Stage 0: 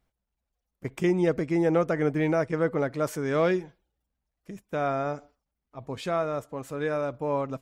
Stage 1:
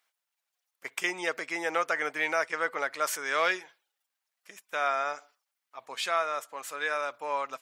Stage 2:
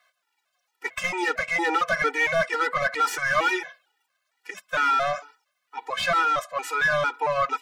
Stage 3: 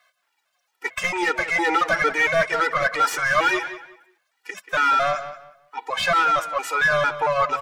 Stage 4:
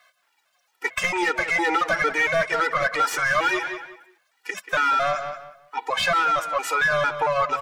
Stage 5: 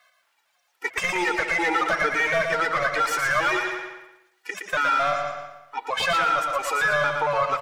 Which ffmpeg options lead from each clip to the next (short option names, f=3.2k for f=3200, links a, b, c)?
-af "highpass=1.3k,volume=8dB"
-filter_complex "[0:a]asplit=2[a][b];[b]highpass=f=720:p=1,volume=23dB,asoftclip=type=tanh:threshold=-13dB[c];[a][c]amix=inputs=2:normalize=0,lowpass=f=1.8k:p=1,volume=-6dB,afftfilt=real='re*gt(sin(2*PI*2.2*pts/sr)*(1-2*mod(floor(b*sr/1024/250),2)),0)':imag='im*gt(sin(2*PI*2.2*pts/sr)*(1-2*mod(floor(b*sr/1024/250),2)),0)':win_size=1024:overlap=0.75,volume=3dB"
-filter_complex "[0:a]asplit=2[a][b];[b]adelay=183,lowpass=f=3.5k:p=1,volume=-12dB,asplit=2[c][d];[d]adelay=183,lowpass=f=3.5k:p=1,volume=0.26,asplit=2[e][f];[f]adelay=183,lowpass=f=3.5k:p=1,volume=0.26[g];[a][c][e][g]amix=inputs=4:normalize=0,volume=3dB"
-af "acompressor=threshold=-27dB:ratio=2,volume=4dB"
-af "aecho=1:1:116|232|348|464:0.562|0.18|0.0576|0.0184,volume=-2dB"